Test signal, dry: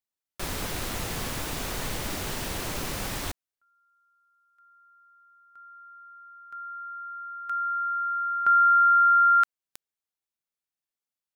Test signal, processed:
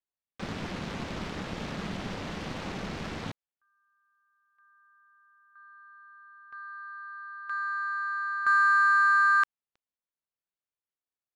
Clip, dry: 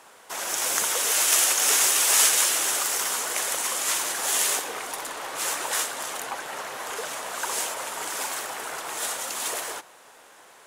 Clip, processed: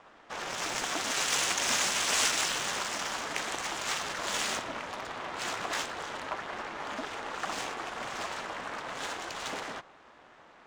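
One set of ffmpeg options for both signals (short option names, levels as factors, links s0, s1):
-af "aeval=exprs='val(0)*sin(2*PI*190*n/s)':c=same,lowpass=6600,adynamicsmooth=sensitivity=5:basefreq=3700"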